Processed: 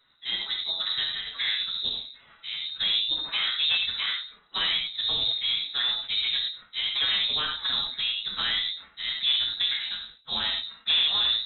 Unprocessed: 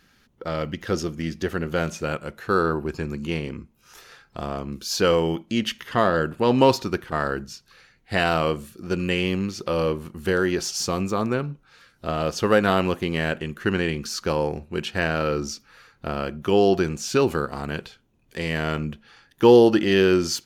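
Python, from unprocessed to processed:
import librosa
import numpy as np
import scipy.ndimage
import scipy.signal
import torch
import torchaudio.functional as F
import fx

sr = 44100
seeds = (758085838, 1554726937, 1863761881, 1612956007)

p1 = fx.partial_stretch(x, sr, pct=122)
p2 = fx.level_steps(p1, sr, step_db=14)
p3 = p1 + (p2 * librosa.db_to_amplitude(-2.5))
p4 = fx.rev_gated(p3, sr, seeds[0], gate_ms=210, shape='flat', drr_db=1.5)
p5 = 10.0 ** (-16.0 / 20.0) * np.tanh(p4 / 10.0 ** (-16.0 / 20.0))
p6 = fx.stretch_vocoder(p5, sr, factor=0.56)
p7 = p6 + fx.echo_single(p6, sr, ms=92, db=-19.0, dry=0)
p8 = fx.freq_invert(p7, sr, carrier_hz=3900)
p9 = fx.sustainer(p8, sr, db_per_s=140.0)
y = p9 * librosa.db_to_amplitude(-4.0)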